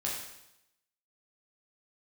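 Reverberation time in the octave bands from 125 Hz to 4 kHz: 0.85, 0.85, 0.85, 0.85, 0.85, 0.85 s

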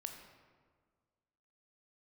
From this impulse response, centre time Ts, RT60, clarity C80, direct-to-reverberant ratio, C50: 35 ms, 1.7 s, 7.0 dB, 4.0 dB, 5.5 dB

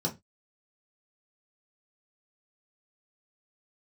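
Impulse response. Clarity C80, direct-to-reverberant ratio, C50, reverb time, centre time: 25.0 dB, -2.0 dB, 16.5 dB, 0.20 s, 13 ms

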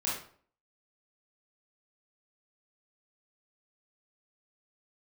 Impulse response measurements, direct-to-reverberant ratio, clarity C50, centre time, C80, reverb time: -7.0 dB, 2.0 dB, 47 ms, 7.5 dB, 0.50 s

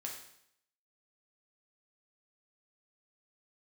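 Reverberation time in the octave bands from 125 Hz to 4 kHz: 0.75, 0.75, 0.70, 0.70, 0.70, 0.70 s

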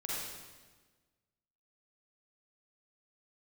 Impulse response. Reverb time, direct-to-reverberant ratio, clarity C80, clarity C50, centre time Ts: 1.4 s, -6.5 dB, -0.5 dB, -4.0 dB, 0.106 s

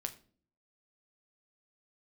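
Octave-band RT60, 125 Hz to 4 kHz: 0.70, 0.70, 0.55, 0.40, 0.35, 0.35 s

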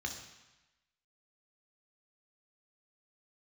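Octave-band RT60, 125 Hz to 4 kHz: 1.0, 1.0, 0.95, 1.1, 1.2, 1.1 s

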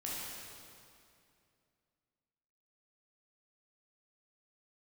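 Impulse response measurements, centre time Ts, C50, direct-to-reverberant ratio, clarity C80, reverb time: 0.154 s, -3.0 dB, -6.5 dB, -1.0 dB, 2.5 s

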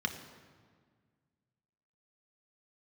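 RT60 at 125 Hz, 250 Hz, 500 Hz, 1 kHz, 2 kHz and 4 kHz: 2.4, 2.2, 1.8, 1.7, 1.5, 1.2 s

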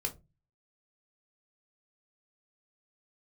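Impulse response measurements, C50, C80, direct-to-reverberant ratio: 17.0 dB, 25.0 dB, 2.0 dB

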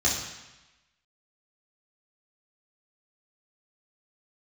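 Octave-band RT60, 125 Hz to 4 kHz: 1.1, 1.0, 0.95, 1.1, 1.2, 1.1 s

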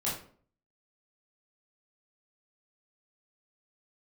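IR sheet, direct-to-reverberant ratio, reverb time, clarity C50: -8.0 dB, 0.50 s, 4.5 dB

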